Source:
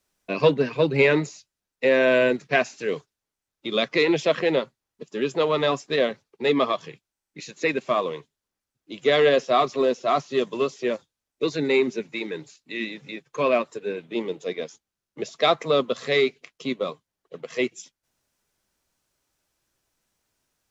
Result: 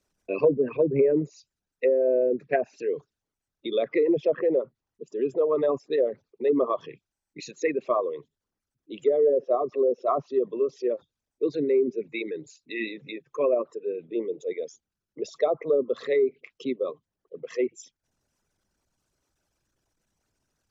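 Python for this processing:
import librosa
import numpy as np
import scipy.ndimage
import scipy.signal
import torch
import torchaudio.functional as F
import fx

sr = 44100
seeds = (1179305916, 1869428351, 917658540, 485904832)

y = fx.envelope_sharpen(x, sr, power=2.0)
y = fx.env_lowpass_down(y, sr, base_hz=560.0, full_db=-15.5)
y = y * 10.0 ** (-1.0 / 20.0)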